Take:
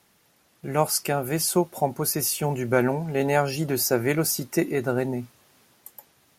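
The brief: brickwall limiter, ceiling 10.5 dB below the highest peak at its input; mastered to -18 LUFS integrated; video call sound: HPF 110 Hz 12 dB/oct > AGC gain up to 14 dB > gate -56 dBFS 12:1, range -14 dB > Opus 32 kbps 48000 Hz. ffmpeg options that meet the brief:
-af "alimiter=limit=-16.5dB:level=0:latency=1,highpass=110,dynaudnorm=m=14dB,agate=range=-14dB:threshold=-56dB:ratio=12,volume=10dB" -ar 48000 -c:a libopus -b:a 32k

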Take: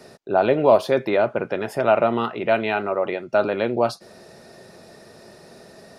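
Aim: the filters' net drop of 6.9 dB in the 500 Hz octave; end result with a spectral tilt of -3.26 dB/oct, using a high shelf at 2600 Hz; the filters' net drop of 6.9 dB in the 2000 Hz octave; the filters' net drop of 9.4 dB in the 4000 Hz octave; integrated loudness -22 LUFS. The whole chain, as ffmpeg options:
-af "equalizer=f=500:t=o:g=-8.5,equalizer=f=2k:t=o:g=-6,highshelf=f=2.6k:g=-4.5,equalizer=f=4k:t=o:g=-6,volume=5dB"

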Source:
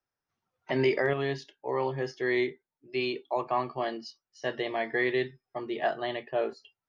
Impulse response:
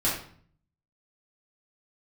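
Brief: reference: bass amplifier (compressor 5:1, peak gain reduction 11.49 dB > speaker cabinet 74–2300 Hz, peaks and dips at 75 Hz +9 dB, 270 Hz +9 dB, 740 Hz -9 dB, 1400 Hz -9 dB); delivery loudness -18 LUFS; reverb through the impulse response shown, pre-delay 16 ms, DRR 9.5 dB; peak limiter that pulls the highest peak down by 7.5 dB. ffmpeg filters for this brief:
-filter_complex "[0:a]alimiter=limit=-23dB:level=0:latency=1,asplit=2[a][b];[1:a]atrim=start_sample=2205,adelay=16[c];[b][c]afir=irnorm=-1:irlink=0,volume=-20dB[d];[a][d]amix=inputs=2:normalize=0,acompressor=threshold=-39dB:ratio=5,highpass=f=74:w=0.5412,highpass=f=74:w=1.3066,equalizer=f=75:t=q:w=4:g=9,equalizer=f=270:t=q:w=4:g=9,equalizer=f=740:t=q:w=4:g=-9,equalizer=f=1.4k:t=q:w=4:g=-9,lowpass=f=2.3k:w=0.5412,lowpass=f=2.3k:w=1.3066,volume=25.5dB"

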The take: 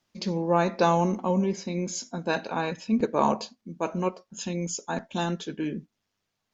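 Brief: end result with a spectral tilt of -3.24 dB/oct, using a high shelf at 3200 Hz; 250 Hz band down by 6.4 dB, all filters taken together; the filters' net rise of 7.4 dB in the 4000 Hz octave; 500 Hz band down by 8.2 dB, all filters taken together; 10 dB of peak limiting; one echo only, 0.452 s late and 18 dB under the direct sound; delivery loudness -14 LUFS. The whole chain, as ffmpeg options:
-af "equalizer=f=250:t=o:g=-7.5,equalizer=f=500:t=o:g=-9,highshelf=f=3.2k:g=6,equalizer=f=4k:t=o:g=4.5,alimiter=limit=-21dB:level=0:latency=1,aecho=1:1:452:0.126,volume=19dB"

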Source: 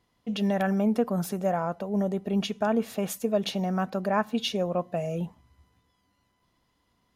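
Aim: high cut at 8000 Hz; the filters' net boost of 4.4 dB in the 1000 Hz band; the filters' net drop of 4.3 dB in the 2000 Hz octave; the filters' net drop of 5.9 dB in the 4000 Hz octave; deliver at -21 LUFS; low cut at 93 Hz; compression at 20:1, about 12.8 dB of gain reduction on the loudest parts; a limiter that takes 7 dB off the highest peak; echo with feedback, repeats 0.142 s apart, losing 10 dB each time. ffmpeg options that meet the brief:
-af "highpass=93,lowpass=8k,equalizer=f=1k:t=o:g=8,equalizer=f=2k:t=o:g=-9,equalizer=f=4k:t=o:g=-4.5,acompressor=threshold=-30dB:ratio=20,alimiter=level_in=2.5dB:limit=-24dB:level=0:latency=1,volume=-2.5dB,aecho=1:1:142|284|426|568:0.316|0.101|0.0324|0.0104,volume=16dB"

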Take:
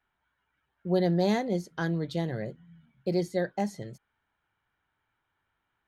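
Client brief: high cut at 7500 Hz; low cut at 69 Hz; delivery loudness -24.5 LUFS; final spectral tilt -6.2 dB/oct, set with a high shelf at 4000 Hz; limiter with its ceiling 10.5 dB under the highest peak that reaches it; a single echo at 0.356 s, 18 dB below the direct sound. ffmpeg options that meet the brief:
-af "highpass=69,lowpass=7.5k,highshelf=f=4k:g=3.5,alimiter=level_in=1dB:limit=-24dB:level=0:latency=1,volume=-1dB,aecho=1:1:356:0.126,volume=11.5dB"

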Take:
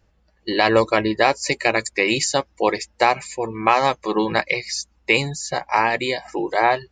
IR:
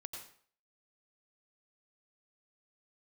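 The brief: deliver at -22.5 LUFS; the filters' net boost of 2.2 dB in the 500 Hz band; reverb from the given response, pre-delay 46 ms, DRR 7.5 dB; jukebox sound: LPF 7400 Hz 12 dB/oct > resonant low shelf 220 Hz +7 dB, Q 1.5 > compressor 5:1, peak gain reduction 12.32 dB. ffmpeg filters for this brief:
-filter_complex "[0:a]equalizer=f=500:t=o:g=4,asplit=2[a][b];[1:a]atrim=start_sample=2205,adelay=46[c];[b][c]afir=irnorm=-1:irlink=0,volume=-4.5dB[d];[a][d]amix=inputs=2:normalize=0,lowpass=7.4k,lowshelf=f=220:t=q:w=1.5:g=7,acompressor=threshold=-21dB:ratio=5,volume=3dB"

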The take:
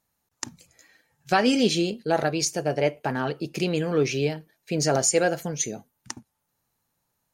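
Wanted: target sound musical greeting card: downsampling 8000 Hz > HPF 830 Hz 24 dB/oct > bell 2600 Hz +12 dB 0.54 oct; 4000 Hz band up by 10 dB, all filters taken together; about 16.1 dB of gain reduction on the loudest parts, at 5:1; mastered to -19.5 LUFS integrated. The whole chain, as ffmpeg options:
-af "equalizer=f=4k:t=o:g=8,acompressor=threshold=-35dB:ratio=5,aresample=8000,aresample=44100,highpass=f=830:w=0.5412,highpass=f=830:w=1.3066,equalizer=f=2.6k:t=o:w=0.54:g=12,volume=18dB"

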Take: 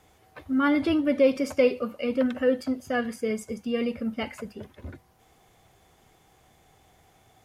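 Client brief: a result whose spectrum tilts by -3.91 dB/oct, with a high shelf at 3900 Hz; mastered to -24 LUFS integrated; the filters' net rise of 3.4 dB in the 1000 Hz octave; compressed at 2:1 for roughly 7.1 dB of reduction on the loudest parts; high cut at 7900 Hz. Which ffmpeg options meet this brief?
-af "lowpass=7.9k,equalizer=f=1k:t=o:g=4.5,highshelf=f=3.9k:g=3.5,acompressor=threshold=-28dB:ratio=2,volume=6.5dB"

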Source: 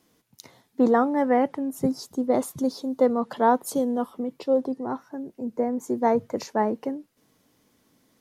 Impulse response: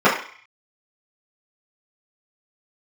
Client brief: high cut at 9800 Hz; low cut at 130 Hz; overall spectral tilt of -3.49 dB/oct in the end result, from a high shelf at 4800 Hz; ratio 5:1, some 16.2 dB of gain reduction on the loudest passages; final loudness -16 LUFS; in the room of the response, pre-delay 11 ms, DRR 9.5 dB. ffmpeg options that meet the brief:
-filter_complex "[0:a]highpass=130,lowpass=9.8k,highshelf=f=4.8k:g=-8,acompressor=threshold=-34dB:ratio=5,asplit=2[a][b];[1:a]atrim=start_sample=2205,adelay=11[c];[b][c]afir=irnorm=-1:irlink=0,volume=-34.5dB[d];[a][d]amix=inputs=2:normalize=0,volume=21.5dB"

